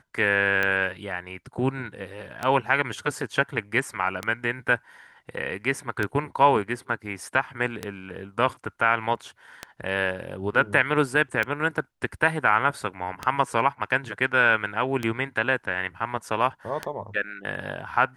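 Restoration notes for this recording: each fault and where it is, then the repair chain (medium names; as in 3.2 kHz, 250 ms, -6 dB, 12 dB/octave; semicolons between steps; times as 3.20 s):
tick 33 1/3 rpm -12 dBFS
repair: de-click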